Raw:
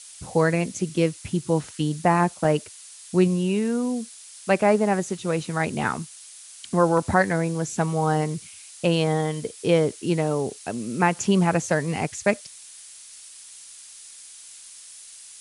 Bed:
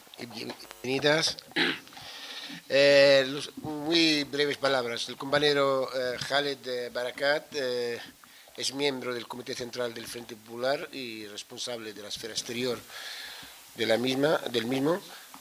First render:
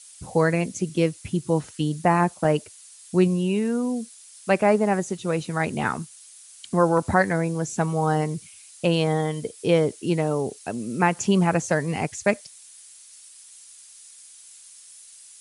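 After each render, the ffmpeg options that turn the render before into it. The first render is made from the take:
-af "afftdn=nr=6:nf=-45"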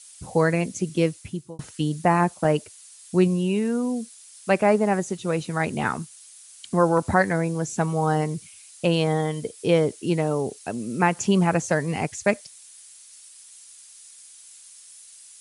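-filter_complex "[0:a]asplit=2[s0][s1];[s0]atrim=end=1.59,asetpts=PTS-STARTPTS,afade=t=out:st=1.11:d=0.48[s2];[s1]atrim=start=1.59,asetpts=PTS-STARTPTS,afade=t=in:d=0.004:c=hsin[s3];[s2][s3]concat=n=2:v=0:a=1"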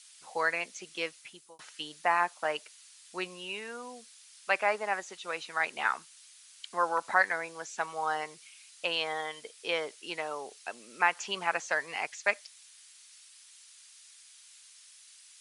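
-filter_complex "[0:a]acrossover=split=5300[s0][s1];[s1]acompressor=threshold=0.00126:ratio=4:attack=1:release=60[s2];[s0][s2]amix=inputs=2:normalize=0,highpass=1100"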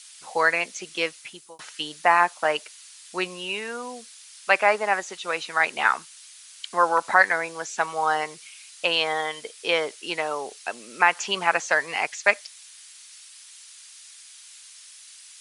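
-af "volume=2.66,alimiter=limit=0.708:level=0:latency=1"

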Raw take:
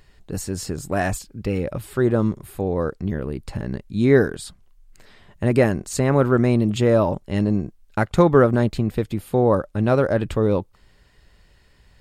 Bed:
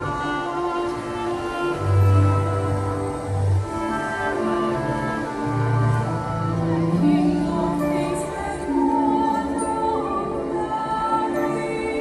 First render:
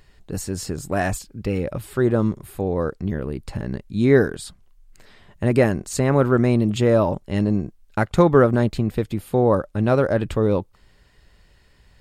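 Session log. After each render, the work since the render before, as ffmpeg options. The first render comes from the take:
-af anull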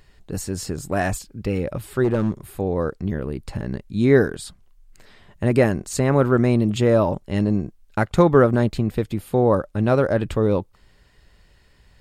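-filter_complex "[0:a]asplit=3[s0][s1][s2];[s0]afade=t=out:st=2.03:d=0.02[s3];[s1]volume=5.31,asoftclip=hard,volume=0.188,afade=t=in:st=2.03:d=0.02,afade=t=out:st=2.46:d=0.02[s4];[s2]afade=t=in:st=2.46:d=0.02[s5];[s3][s4][s5]amix=inputs=3:normalize=0"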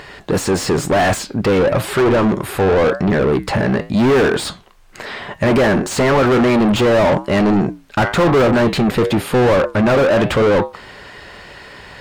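-filter_complex "[0:a]flanger=delay=6.8:depth=2.7:regen=-82:speed=0.94:shape=sinusoidal,asplit=2[s0][s1];[s1]highpass=f=720:p=1,volume=100,asoftclip=type=tanh:threshold=0.531[s2];[s0][s2]amix=inputs=2:normalize=0,lowpass=f=1600:p=1,volume=0.501"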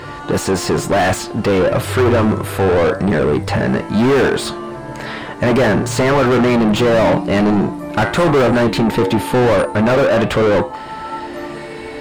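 -filter_complex "[1:a]volume=0.562[s0];[0:a][s0]amix=inputs=2:normalize=0"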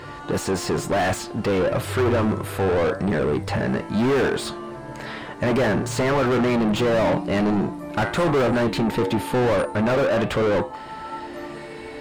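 -af "volume=0.447"

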